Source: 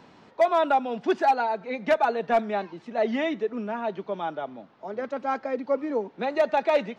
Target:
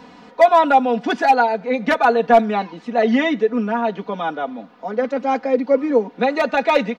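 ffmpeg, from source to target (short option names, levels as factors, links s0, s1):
-af "aecho=1:1:4.1:0.82,volume=2.24"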